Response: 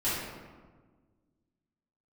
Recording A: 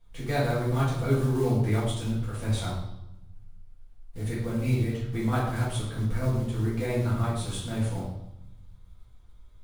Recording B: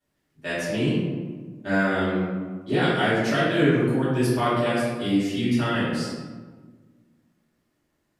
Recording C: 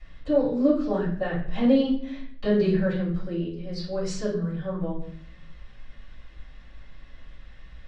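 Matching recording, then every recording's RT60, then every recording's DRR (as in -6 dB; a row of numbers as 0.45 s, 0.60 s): B; 0.90 s, 1.5 s, 0.55 s; -8.5 dB, -13.5 dB, -13.5 dB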